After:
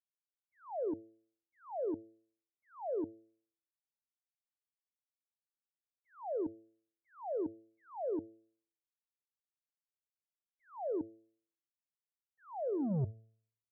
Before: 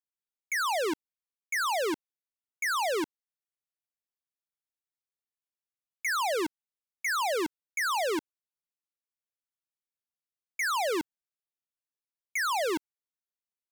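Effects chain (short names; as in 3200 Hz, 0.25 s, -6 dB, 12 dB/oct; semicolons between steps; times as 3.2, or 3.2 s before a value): tape stop at the end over 1.61 s; expander -17 dBFS; inverse Chebyshev low-pass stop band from 2900 Hz, stop band 70 dB; bell 100 Hz +14 dB 0.38 oct; de-hum 111.3 Hz, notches 6; gain +17.5 dB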